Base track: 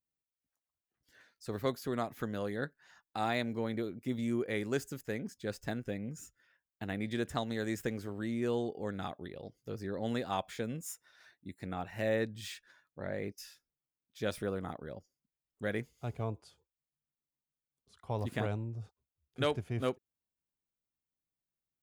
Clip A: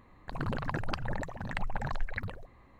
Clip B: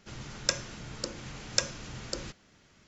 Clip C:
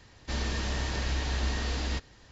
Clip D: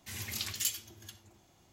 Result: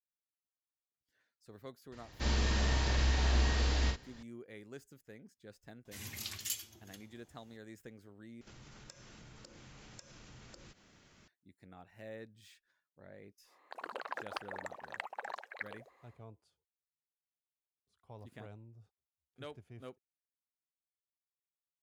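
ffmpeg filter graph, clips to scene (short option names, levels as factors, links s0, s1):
-filter_complex "[0:a]volume=0.158[s0];[3:a]asplit=2[s1][s2];[s2]adelay=47,volume=0.596[s3];[s1][s3]amix=inputs=2:normalize=0[s4];[2:a]acompressor=threshold=0.00316:ratio=6:attack=3.2:release=140:knee=1:detection=peak[s5];[1:a]highpass=f=430:w=0.5412,highpass=f=430:w=1.3066[s6];[s0]asplit=2[s7][s8];[s7]atrim=end=8.414[s9];[s5]atrim=end=2.87,asetpts=PTS-STARTPTS,volume=0.794[s10];[s8]atrim=start=11.276[s11];[s4]atrim=end=2.31,asetpts=PTS-STARTPTS,volume=0.75,afade=t=in:d=0.004:c=hsin,afade=t=out:st=2.306:d=0.004:c=hsin,adelay=1920[s12];[4:a]atrim=end=1.72,asetpts=PTS-STARTPTS,volume=0.531,afade=t=in:d=0.004:c=hsin,afade=t=out:st=1.716:d=0.004:c=hsin,adelay=257985S[s13];[s6]atrim=end=2.79,asetpts=PTS-STARTPTS,volume=0.631,afade=t=in:d=0.1,afade=t=out:st=2.69:d=0.1,adelay=13430[s14];[s9][s10]acrossfade=d=0.004:c1=hsin:c2=hsin[s15];[s15][s11]acrossfade=d=0.004:c1=hsin:c2=hsin[s16];[s16][s12][s13][s14]amix=inputs=4:normalize=0"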